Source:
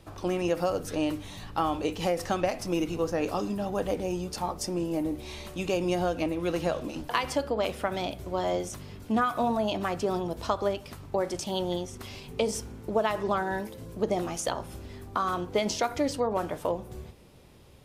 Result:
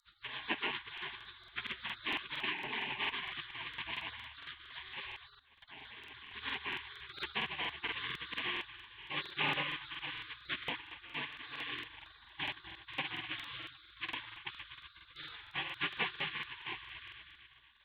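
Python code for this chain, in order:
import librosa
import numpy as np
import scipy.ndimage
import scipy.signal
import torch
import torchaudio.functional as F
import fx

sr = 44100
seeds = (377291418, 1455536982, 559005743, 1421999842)

y = fx.cvsd(x, sr, bps=16000)
y = fx.dynamic_eq(y, sr, hz=830.0, q=0.96, threshold_db=-40.0, ratio=4.0, max_db=3)
y = scipy.signal.sosfilt(scipy.signal.butter(2, 270.0, 'highpass', fs=sr, output='sos'), y)
y = fx.echo_heads(y, sr, ms=123, heads='first and second', feedback_pct=68, wet_db=-15.5)
y = fx.spec_paint(y, sr, seeds[0], shape='rise', start_s=2.34, length_s=1.07, low_hz=420.0, high_hz=980.0, level_db=-30.0)
y = fx.fixed_phaser(y, sr, hz=350.0, stages=6)
y = fx.rotary_switch(y, sr, hz=7.5, then_hz=0.9, switch_at_s=5.76)
y = fx.level_steps(y, sr, step_db=22, at=(5.36, 6.34))
y = y + 10.0 ** (-22.5 / 20.0) * np.pad(y, (int(543 * sr / 1000.0), 0))[:len(y)]
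y = fx.spec_gate(y, sr, threshold_db=-30, keep='weak')
y = fx.buffer_crackle(y, sr, first_s=0.93, period_s=0.23, block=2048, kind='repeat')
y = fx.band_squash(y, sr, depth_pct=70, at=(7.2, 8.39))
y = y * librosa.db_to_amplitude(14.5)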